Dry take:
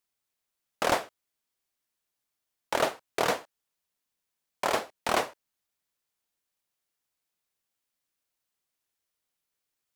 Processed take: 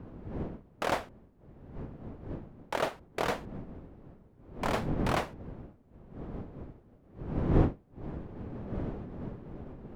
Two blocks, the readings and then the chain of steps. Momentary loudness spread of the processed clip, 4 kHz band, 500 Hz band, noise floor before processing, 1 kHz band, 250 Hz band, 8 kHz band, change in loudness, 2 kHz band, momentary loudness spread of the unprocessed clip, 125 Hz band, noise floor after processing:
19 LU, −7.0 dB, −2.0 dB, −85 dBFS, −4.0 dB, +8.5 dB, −10.0 dB, −5.5 dB, −4.5 dB, 6 LU, +17.0 dB, −60 dBFS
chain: wind on the microphone 350 Hz −35 dBFS
bass and treble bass +4 dB, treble −6 dB
level −4.5 dB

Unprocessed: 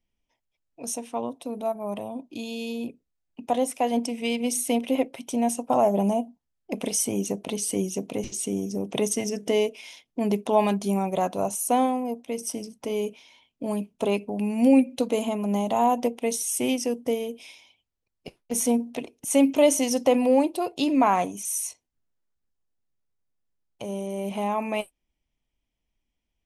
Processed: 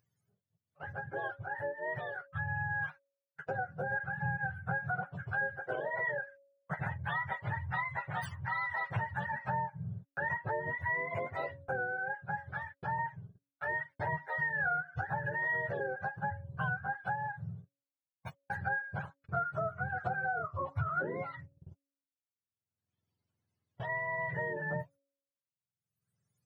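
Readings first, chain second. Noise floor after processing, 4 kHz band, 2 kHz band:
below −85 dBFS, −23.0 dB, +6.5 dB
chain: frequency axis turned over on the octave scale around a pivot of 620 Hz
noise gate −45 dBFS, range −46 dB
hum removal 278.6 Hz, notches 2
downward compressor 6 to 1, threshold −30 dBFS, peak gain reduction 14.5 dB
dynamic equaliser 390 Hz, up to −6 dB, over −48 dBFS, Q 0.82
upward compression, threshold −46 dBFS

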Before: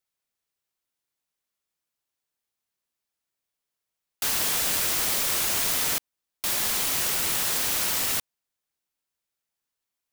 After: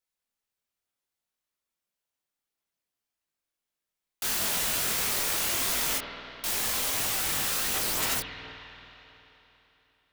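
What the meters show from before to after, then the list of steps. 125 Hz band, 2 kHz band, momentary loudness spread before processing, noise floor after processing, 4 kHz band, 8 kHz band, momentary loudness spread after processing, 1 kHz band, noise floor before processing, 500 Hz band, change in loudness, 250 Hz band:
−0.5 dB, −1.0 dB, 5 LU, below −85 dBFS, −2.5 dB, −3.0 dB, 11 LU, −1.0 dB, below −85 dBFS, −1.0 dB, −3.0 dB, −0.5 dB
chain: spring reverb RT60 3.4 s, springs 50 ms, chirp 45 ms, DRR 3.5 dB
multi-voice chorus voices 4, 1.4 Hz, delay 21 ms, depth 3 ms

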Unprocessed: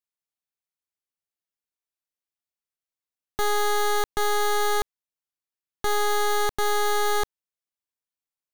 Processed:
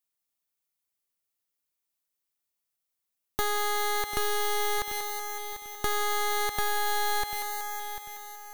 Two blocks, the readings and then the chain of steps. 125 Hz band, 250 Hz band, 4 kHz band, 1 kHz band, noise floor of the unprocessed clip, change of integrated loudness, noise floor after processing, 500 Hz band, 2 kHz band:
−3.0 dB, −4.5 dB, −2.0 dB, −3.5 dB, below −85 dBFS, −4.5 dB, −84 dBFS, −7.0 dB, −2.5 dB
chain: on a send: feedback echo with a high-pass in the loop 187 ms, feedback 70%, high-pass 620 Hz, level −12 dB
on the sum: dynamic equaliser 2,100 Hz, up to +6 dB, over −39 dBFS, Q 0.7
notch filter 1,600 Hz, Q 26
in parallel at −9 dB: hard clipping −27.5 dBFS, distortion −9 dB
on the sum: downward compressor 6 to 1, threshold −27 dBFS, peak gain reduction 9 dB
high-shelf EQ 8,600 Hz +9 dB
feedback echo at a low word length 744 ms, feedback 35%, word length 9 bits, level −10.5 dB

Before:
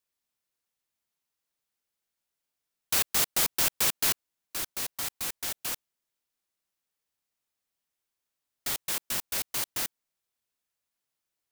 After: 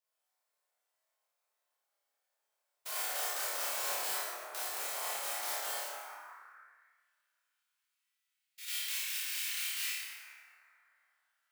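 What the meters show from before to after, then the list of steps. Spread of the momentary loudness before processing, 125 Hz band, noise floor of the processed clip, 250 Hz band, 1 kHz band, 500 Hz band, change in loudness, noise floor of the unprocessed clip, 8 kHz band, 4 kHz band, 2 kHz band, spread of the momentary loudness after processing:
11 LU, below −30 dB, −85 dBFS, −19.0 dB, −1.0 dB, −2.5 dB, −7.0 dB, below −85 dBFS, −7.0 dB, −5.5 dB, −3.0 dB, 14 LU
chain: spectrum averaged block by block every 100 ms
high-pass filter 350 Hz 6 dB per octave
downward compressor 6 to 1, threshold −34 dBFS, peak gain reduction 10.5 dB
flutter between parallel walls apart 4.8 metres, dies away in 0.56 s
dense smooth reverb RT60 3.4 s, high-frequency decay 0.3×, DRR −8.5 dB
high-pass filter sweep 600 Hz → 2,500 Hz, 0:05.85–0:07.09
level −7.5 dB

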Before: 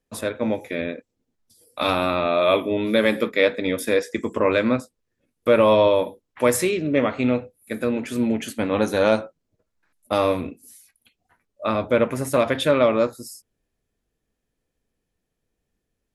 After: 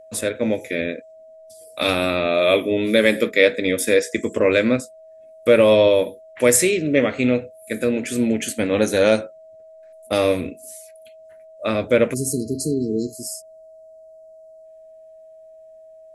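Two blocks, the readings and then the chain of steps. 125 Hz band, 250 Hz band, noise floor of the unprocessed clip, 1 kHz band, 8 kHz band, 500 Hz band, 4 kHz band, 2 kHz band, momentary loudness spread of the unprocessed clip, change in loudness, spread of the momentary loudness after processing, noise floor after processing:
+1.5 dB, +2.0 dB, −79 dBFS, −4.5 dB, +9.5 dB, +2.0 dB, +3.5 dB, +4.0 dB, 11 LU, +2.5 dB, 13 LU, −45 dBFS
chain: time-frequency box erased 0:12.14–0:14.65, 470–4,000 Hz
steady tone 640 Hz −43 dBFS
octave-band graphic EQ 500/1,000/2,000/8,000 Hz +4/−10/+5/+10 dB
level +1.5 dB

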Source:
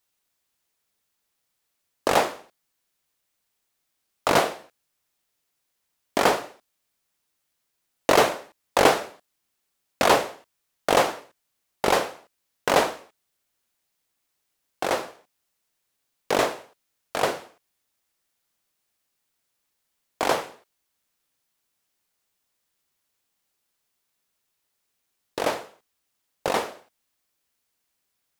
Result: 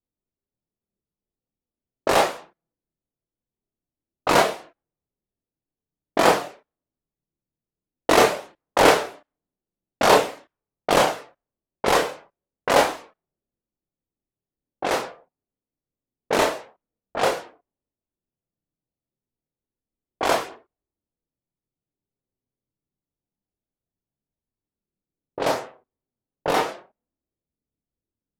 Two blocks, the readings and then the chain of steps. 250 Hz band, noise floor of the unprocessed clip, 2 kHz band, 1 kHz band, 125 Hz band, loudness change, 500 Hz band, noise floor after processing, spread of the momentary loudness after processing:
+2.5 dB, −77 dBFS, +2.5 dB, +2.5 dB, +2.5 dB, +2.5 dB, +2.5 dB, below −85 dBFS, 17 LU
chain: multi-voice chorus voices 4, 0.14 Hz, delay 28 ms, depth 4 ms
low-pass that shuts in the quiet parts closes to 320 Hz, open at −25 dBFS
level +5.5 dB

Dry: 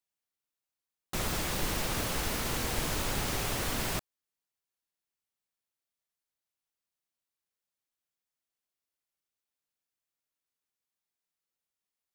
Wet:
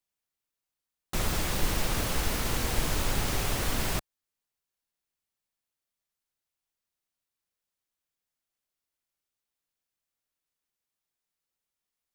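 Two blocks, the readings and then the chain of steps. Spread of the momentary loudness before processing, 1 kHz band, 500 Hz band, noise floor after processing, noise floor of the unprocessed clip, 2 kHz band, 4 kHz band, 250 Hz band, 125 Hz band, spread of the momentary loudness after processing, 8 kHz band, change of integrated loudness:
3 LU, +1.5 dB, +1.5 dB, below −85 dBFS, below −85 dBFS, +1.5 dB, +1.5 dB, +2.0 dB, +4.0 dB, 3 LU, +1.5 dB, +2.0 dB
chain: low-shelf EQ 70 Hz +7.5 dB
level +1.5 dB

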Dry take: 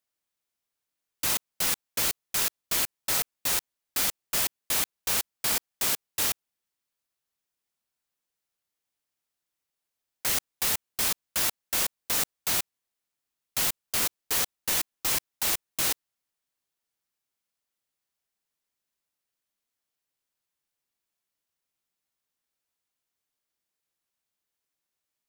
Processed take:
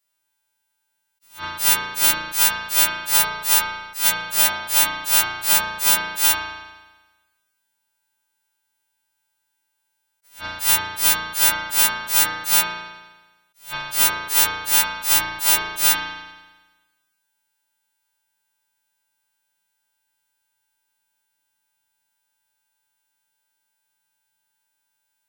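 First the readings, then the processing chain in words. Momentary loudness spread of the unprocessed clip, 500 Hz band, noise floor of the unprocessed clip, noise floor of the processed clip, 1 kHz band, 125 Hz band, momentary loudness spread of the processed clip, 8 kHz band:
1 LU, +5.0 dB, below −85 dBFS, −75 dBFS, +12.0 dB, +5.0 dB, 10 LU, +8.0 dB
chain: every partial snapped to a pitch grid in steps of 2 semitones
high-shelf EQ 5,300 Hz −6 dB
spring reverb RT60 1.2 s, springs 35 ms, chirp 70 ms, DRR −4 dB
level that may rise only so fast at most 180 dB per second
level +4 dB

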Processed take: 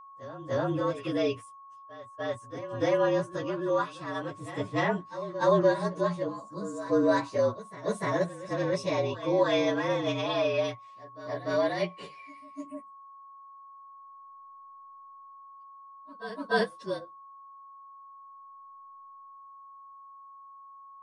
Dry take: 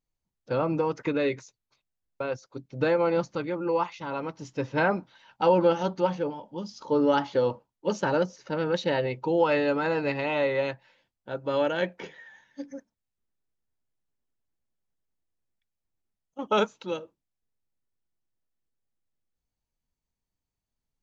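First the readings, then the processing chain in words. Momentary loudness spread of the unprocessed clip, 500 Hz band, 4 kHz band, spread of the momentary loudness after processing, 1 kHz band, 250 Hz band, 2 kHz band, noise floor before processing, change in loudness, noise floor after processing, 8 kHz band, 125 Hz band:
15 LU, −1.5 dB, 0.0 dB, 19 LU, −2.5 dB, −1.5 dB, −2.0 dB, below −85 dBFS, −2.0 dB, −50 dBFS, can't be measured, −0.5 dB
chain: partials spread apart or drawn together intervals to 112%
echo ahead of the sound 296 ms −14 dB
steady tone 1,100 Hz −47 dBFS

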